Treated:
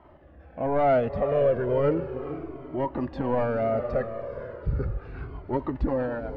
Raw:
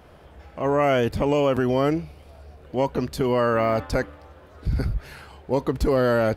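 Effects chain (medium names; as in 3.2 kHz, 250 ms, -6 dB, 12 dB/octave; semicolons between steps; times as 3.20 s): fade out at the end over 0.53 s; in parallel at -2.5 dB: level held to a coarse grid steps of 10 dB; on the sum: rotary cabinet horn 0.85 Hz, later 8 Hz, at 4.60 s; overdrive pedal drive 16 dB, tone 1.1 kHz, clips at -7.5 dBFS; tape spacing loss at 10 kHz 33 dB; on a send: echo that smears into a reverb 457 ms, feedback 41%, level -10 dB; on the sum: Shepard-style flanger falling 0.36 Hz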